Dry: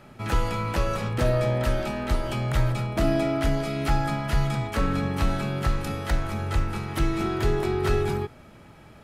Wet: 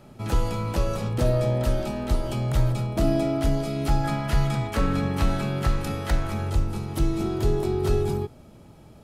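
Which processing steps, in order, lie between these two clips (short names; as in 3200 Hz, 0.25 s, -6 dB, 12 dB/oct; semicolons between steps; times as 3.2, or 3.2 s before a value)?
bell 1800 Hz -9 dB 1.6 oct, from 4.04 s -2.5 dB, from 6.5 s -12.5 dB; gain +1.5 dB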